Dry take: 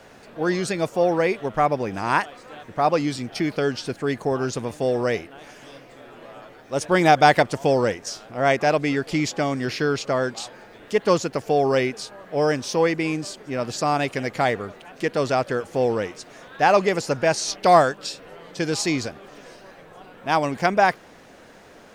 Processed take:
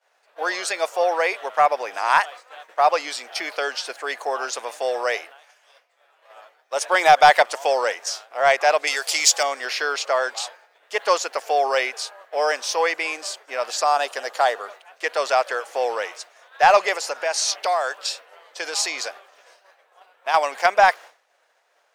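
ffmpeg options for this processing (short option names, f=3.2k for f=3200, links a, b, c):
-filter_complex "[0:a]asettb=1/sr,asplit=3[a][b][c];[a]atrim=end=5.324[d];[b]atrim=start=5.32:end=6.3,asetpts=PTS-STARTPTS,afade=t=in:d=0.004:c=qsin,afade=t=out:st=0.976:d=0.004:c=qsin,equalizer=f=150:t=o:w=2.9:g=-8.5[e];[c]atrim=start=6.296[f];[d][e]acrossfade=d=0.004:c1=hsin:c2=qsin[g];[g][f]acrossfade=d=0.004:c1=qsin:c2=hsin,asettb=1/sr,asplit=3[h][i][j];[h]atrim=end=8.874[k];[i]atrim=start=8.87:end=9.43,asetpts=PTS-STARTPTS,afade=t=in:d=0.004:c=qsin,afade=t=out:st=0.556:d=0.004:c=qsin,bass=f=250:g=-14,treble=f=4k:g=15[l];[j]atrim=start=9.426[m];[k][l]acrossfade=d=0.004:c1=hsin:c2=qsin[n];[n][m]acrossfade=d=0.004:c1=qsin:c2=hsin,asettb=1/sr,asplit=3[o][p][q];[o]atrim=end=13.844[r];[p]atrim=start=13.84:end=14.66,asetpts=PTS-STARTPTS,afade=t=in:d=0.004:c=qsin,afade=t=out:st=0.816:d=0.004:c=qsin,equalizer=f=2.2k:t=o:w=0.37:g=-12[s];[q]atrim=start=14.656[t];[r][s]acrossfade=d=0.004:c1=hsin:c2=qsin[u];[u][t]acrossfade=d=0.004:c1=qsin:c2=hsin,asettb=1/sr,asplit=3[v][w][x];[v]atrim=end=16.954[y];[w]atrim=start=16.95:end=20.34,asetpts=PTS-STARTPTS,afade=t=in:d=0.004:c=qsin,afade=t=out:st=3.386:d=0.004:c=qsin,acompressor=threshold=-21dB:ratio=6:attack=3.2:release=140:knee=1:detection=peak[z];[x]atrim=start=20.336[aa];[y][z]acrossfade=d=0.004:c1=hsin:c2=qsin[ab];[ab][aa]acrossfade=d=0.004:c1=qsin:c2=hsin,agate=range=-33dB:threshold=-35dB:ratio=3:detection=peak,highpass=f=600:w=0.5412,highpass=f=600:w=1.3066,acontrast=45,volume=-1dB"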